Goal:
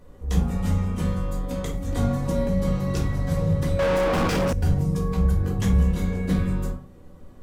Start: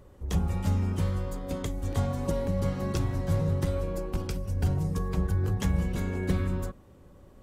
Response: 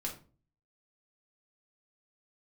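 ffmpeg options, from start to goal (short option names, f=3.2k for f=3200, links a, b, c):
-filter_complex "[0:a]bandreject=f=50:t=h:w=6,bandreject=f=100:t=h:w=6,bandreject=f=150:t=h:w=6,bandreject=f=200:t=h:w=6,bandreject=f=250:t=h:w=6[a];[1:a]atrim=start_sample=2205,afade=t=out:st=0.22:d=0.01,atrim=end_sample=10143,asetrate=41013,aresample=44100[b];[a][b]afir=irnorm=-1:irlink=0,asettb=1/sr,asplit=3[c][d][e];[c]atrim=end=3.794[f];[d]atrim=start=3.79:end=4.53,asetpts=PTS-STARTPTS,afade=t=in:d=0.004:c=qsin,afade=t=out:st=0.736:d=0.004:c=qsin,asplit=2[g][h];[h]highpass=f=720:p=1,volume=38dB,asoftclip=type=tanh:threshold=-17.5dB[i];[g][i]amix=inputs=2:normalize=0,lowpass=f=1.9k:p=1,volume=-6dB[j];[e]atrim=start=4.526[k];[f][j]acrossfade=d=0.004:c1=hsin:c2=qsin[l];[l][k]acrossfade=d=0.004:c1=qsin:c2=hsin,volume=3dB"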